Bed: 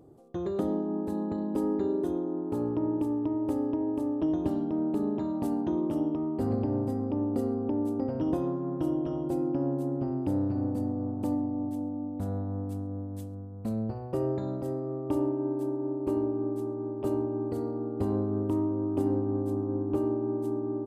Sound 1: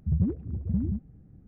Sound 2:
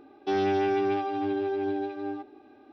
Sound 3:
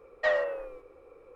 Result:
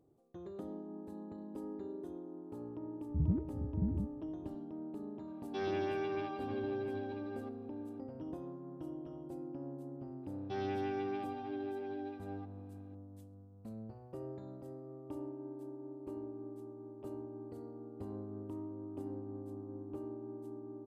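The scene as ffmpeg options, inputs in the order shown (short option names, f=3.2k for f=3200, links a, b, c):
-filter_complex "[2:a]asplit=2[a][b];[0:a]volume=-15.5dB[c];[a]aecho=1:1:1.8:0.42[d];[1:a]atrim=end=1.47,asetpts=PTS-STARTPTS,volume=-7dB,afade=t=in:d=0.004:c=hsin,afade=t=out:st=1.466:d=0.004:c=hsin,adelay=3080[e];[d]atrim=end=2.72,asetpts=PTS-STARTPTS,volume=-10dB,afade=t=in:d=0.004:c=hsin,afade=t=out:st=2.716:d=0.004:c=hsin,adelay=5270[f];[b]atrim=end=2.72,asetpts=PTS-STARTPTS,volume=-12.5dB,afade=t=in:d=0.004:c=hsin,afade=t=out:st=2.716:d=0.004:c=hsin,adelay=10230[g];[c][e][f][g]amix=inputs=4:normalize=0"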